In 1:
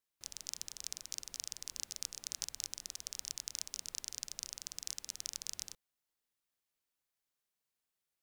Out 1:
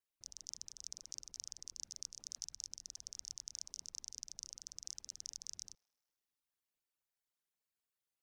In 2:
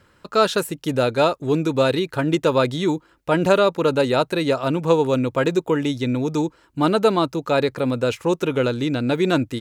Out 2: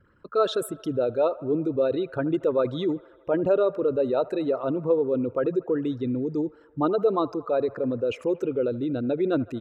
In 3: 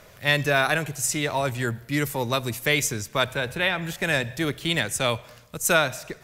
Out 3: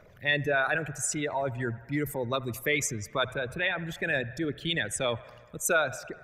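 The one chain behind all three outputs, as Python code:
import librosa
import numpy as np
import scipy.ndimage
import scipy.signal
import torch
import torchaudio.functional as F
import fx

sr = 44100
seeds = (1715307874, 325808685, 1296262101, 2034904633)

p1 = fx.envelope_sharpen(x, sr, power=2.0)
p2 = p1 + fx.echo_wet_bandpass(p1, sr, ms=77, feedback_pct=75, hz=1100.0, wet_db=-19.0, dry=0)
y = F.gain(torch.from_numpy(p2), -5.0).numpy()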